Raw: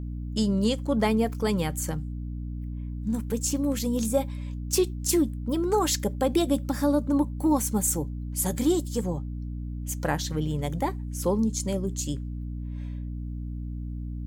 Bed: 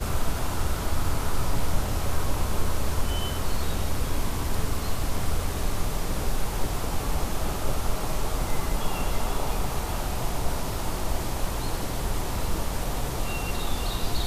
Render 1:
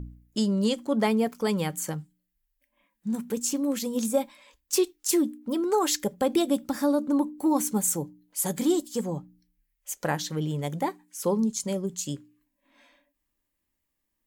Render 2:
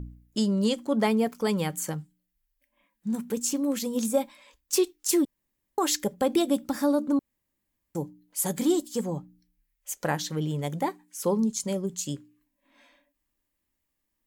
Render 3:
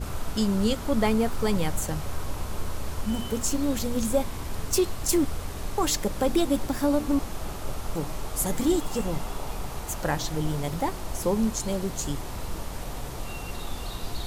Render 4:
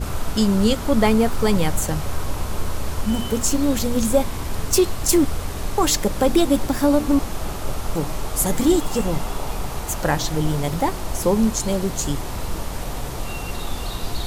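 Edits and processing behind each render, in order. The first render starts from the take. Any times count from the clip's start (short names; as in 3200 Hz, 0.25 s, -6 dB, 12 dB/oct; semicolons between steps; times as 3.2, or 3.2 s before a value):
de-hum 60 Hz, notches 5
5.25–5.78 room tone; 7.19–7.95 room tone
add bed -6 dB
gain +6.5 dB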